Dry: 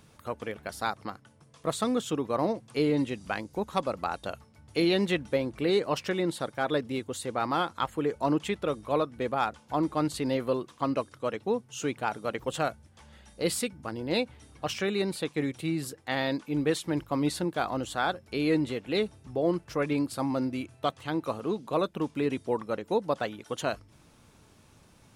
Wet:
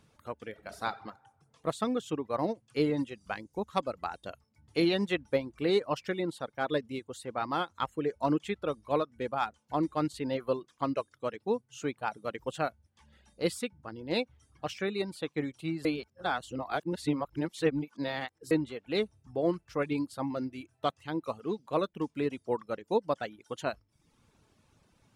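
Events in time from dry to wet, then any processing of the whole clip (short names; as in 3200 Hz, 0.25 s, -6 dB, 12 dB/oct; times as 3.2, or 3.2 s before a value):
0.49–0.91 reverb throw, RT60 1.1 s, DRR 4 dB
15.85–18.51 reverse
whole clip: reverb removal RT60 0.67 s; high shelf 9500 Hz -7 dB; upward expander 1.5:1, over -35 dBFS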